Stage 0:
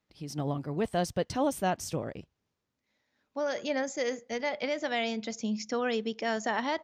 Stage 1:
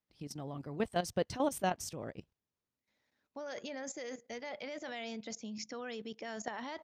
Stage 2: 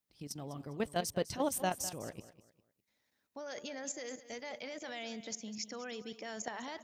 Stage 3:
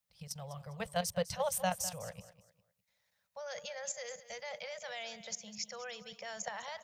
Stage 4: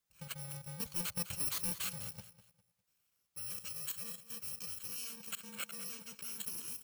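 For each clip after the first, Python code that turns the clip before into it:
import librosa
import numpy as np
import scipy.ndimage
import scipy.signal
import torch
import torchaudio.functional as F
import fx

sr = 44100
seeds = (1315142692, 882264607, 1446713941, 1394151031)

y1 = fx.hpss(x, sr, part='percussive', gain_db=3)
y1 = fx.level_steps(y1, sr, step_db=13)
y1 = y1 * librosa.db_to_amplitude(-3.0)
y2 = fx.high_shelf(y1, sr, hz=5900.0, db=10.0)
y2 = fx.echo_feedback(y2, sr, ms=202, feedback_pct=32, wet_db=-15.0)
y2 = y2 * librosa.db_to_amplitude(-1.5)
y3 = scipy.signal.sosfilt(scipy.signal.cheby1(3, 1.0, [190.0, 500.0], 'bandstop', fs=sr, output='sos'), y2)
y3 = y3 * librosa.db_to_amplitude(1.5)
y4 = fx.bit_reversed(y3, sr, seeds[0], block=64)
y4 = np.clip(y4, -10.0 ** (-32.5 / 20.0), 10.0 ** (-32.5 / 20.0))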